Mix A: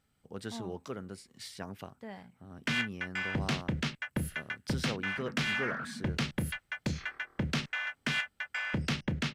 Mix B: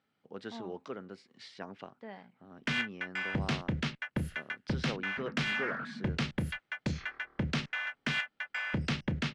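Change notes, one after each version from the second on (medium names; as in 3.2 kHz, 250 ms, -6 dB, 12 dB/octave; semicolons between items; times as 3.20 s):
speech: add band-pass 220–4500 Hz; master: add distance through air 61 m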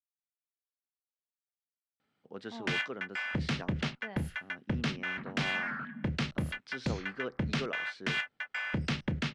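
speech: entry +2.00 s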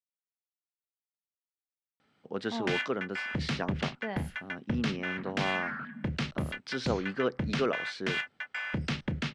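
speech +9.0 dB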